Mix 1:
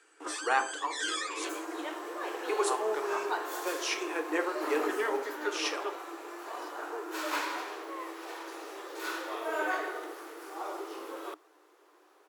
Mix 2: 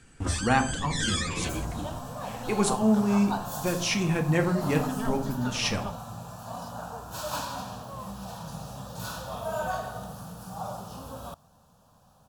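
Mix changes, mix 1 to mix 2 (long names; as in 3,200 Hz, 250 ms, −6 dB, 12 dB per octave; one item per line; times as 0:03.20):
second sound: add phaser with its sweep stopped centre 860 Hz, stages 4
master: remove Chebyshev high-pass with heavy ripple 300 Hz, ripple 6 dB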